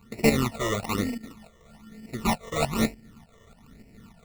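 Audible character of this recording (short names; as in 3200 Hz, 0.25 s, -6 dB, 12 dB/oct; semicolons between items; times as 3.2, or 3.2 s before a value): a buzz of ramps at a fixed pitch in blocks of 32 samples; tremolo saw up 3.4 Hz, depth 60%; aliases and images of a low sample rate 1600 Hz, jitter 0%; phasing stages 12, 1.1 Hz, lowest notch 250–1200 Hz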